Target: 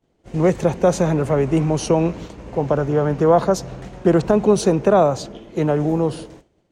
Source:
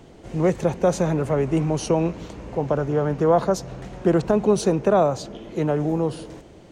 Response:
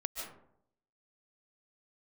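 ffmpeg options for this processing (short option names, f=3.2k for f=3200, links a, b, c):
-af "agate=range=-33dB:threshold=-32dB:ratio=3:detection=peak,volume=3.5dB"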